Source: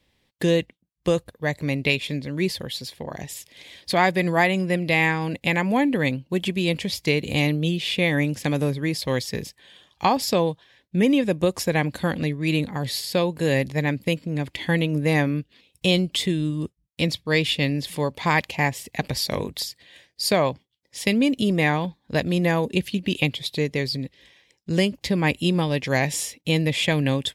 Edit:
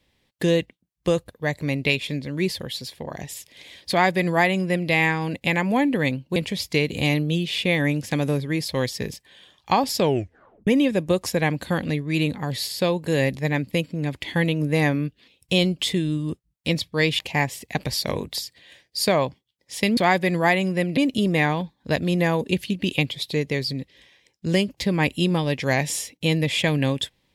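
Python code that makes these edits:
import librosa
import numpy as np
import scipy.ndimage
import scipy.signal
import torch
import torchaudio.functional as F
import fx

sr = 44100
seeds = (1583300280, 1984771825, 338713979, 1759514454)

y = fx.edit(x, sr, fx.duplicate(start_s=3.9, length_s=1.0, to_s=21.21),
    fx.cut(start_s=6.36, length_s=0.33),
    fx.tape_stop(start_s=10.33, length_s=0.67),
    fx.cut(start_s=17.52, length_s=0.91), tone=tone)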